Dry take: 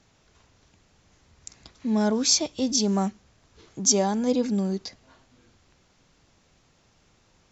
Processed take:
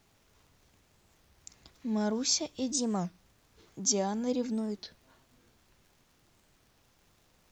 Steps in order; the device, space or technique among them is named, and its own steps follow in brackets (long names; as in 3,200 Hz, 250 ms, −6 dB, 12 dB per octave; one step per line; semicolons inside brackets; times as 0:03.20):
warped LP (wow of a warped record 33 1/3 rpm, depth 250 cents; surface crackle; pink noise bed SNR 34 dB)
level −7.5 dB